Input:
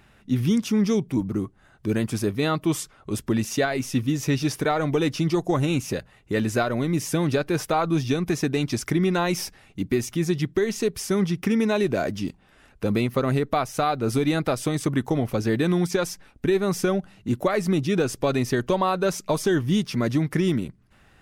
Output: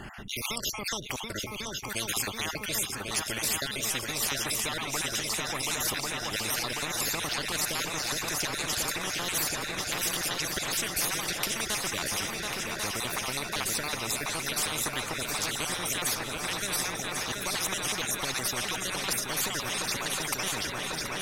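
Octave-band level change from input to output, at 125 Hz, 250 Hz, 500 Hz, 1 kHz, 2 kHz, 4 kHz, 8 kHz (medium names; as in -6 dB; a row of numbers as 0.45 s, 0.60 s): -16.0 dB, -17.5 dB, -14.0 dB, -6.0 dB, +0.5 dB, +5.0 dB, +6.5 dB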